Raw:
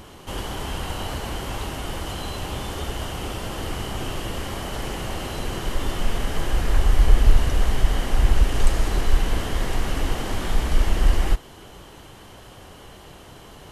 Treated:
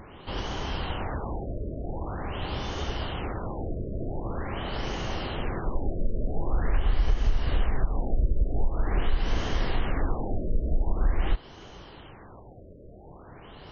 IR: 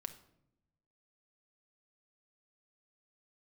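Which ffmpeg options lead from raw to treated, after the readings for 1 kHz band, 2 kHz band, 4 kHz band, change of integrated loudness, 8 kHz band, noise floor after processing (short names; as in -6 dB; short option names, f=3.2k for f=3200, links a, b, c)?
-4.5 dB, -6.0 dB, -7.5 dB, -5.5 dB, -17.0 dB, -47 dBFS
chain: -af "acompressor=threshold=-16dB:ratio=6,afftfilt=real='re*lt(b*sr/1024,640*pow(6800/640,0.5+0.5*sin(2*PI*0.45*pts/sr)))':imag='im*lt(b*sr/1024,640*pow(6800/640,0.5+0.5*sin(2*PI*0.45*pts/sr)))':win_size=1024:overlap=0.75,volume=-2dB"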